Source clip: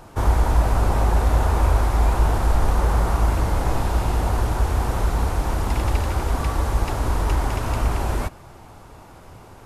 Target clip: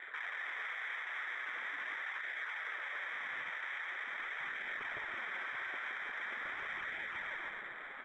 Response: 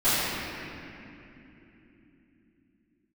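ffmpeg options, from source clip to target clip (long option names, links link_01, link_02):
-filter_complex "[0:a]atempo=1.2,highpass=480,lowpass=frequency=2300:width_type=q:width=0.5098,lowpass=frequency=2300:width_type=q:width=0.6013,lowpass=frequency=2300:width_type=q:width=0.9,lowpass=frequency=2300:width_type=q:width=2.563,afreqshift=-2700,asplit=2[link_01][link_02];[1:a]atrim=start_sample=2205[link_03];[link_02][link_03]afir=irnorm=-1:irlink=0,volume=-33.5dB[link_04];[link_01][link_04]amix=inputs=2:normalize=0,adynamicsmooth=sensitivity=4.5:basefreq=1500,aecho=1:1:170|323|460.7|584.6|696.2:0.631|0.398|0.251|0.158|0.1,flanger=delay=0.4:depth=7.6:regen=-40:speed=0.43:shape=sinusoidal,acompressor=threshold=-42dB:ratio=12,alimiter=level_in=17.5dB:limit=-24dB:level=0:latency=1:release=60,volume=-17.5dB,afwtdn=0.001,volume=8.5dB"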